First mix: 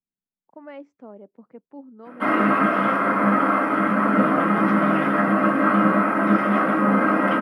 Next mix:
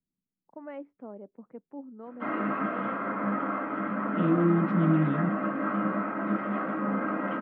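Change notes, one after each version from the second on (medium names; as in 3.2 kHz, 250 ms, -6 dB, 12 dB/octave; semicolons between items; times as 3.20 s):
second voice +10.5 dB; background: add four-pole ladder low-pass 5.8 kHz, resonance 50%; master: add distance through air 470 m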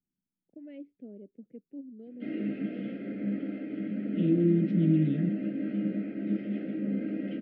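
master: add Chebyshev band-stop 370–3000 Hz, order 2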